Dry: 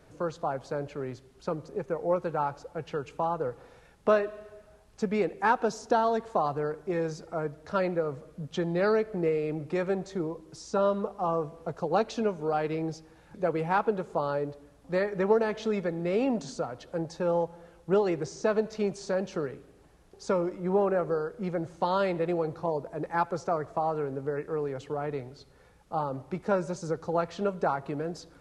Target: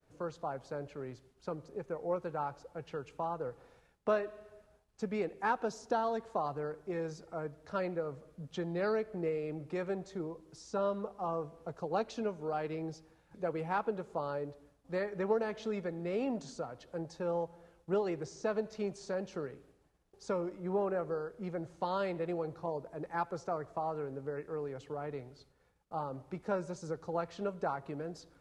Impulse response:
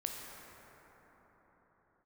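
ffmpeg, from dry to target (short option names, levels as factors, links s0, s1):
-af "agate=range=0.0224:threshold=0.00251:ratio=3:detection=peak,volume=0.422"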